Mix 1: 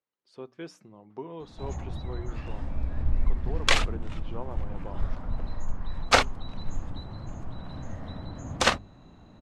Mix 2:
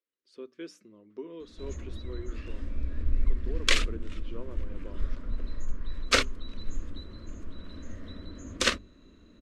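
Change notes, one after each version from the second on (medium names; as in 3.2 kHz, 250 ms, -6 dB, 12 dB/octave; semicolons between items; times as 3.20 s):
master: add static phaser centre 330 Hz, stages 4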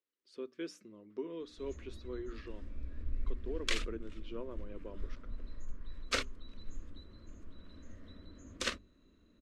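background -10.5 dB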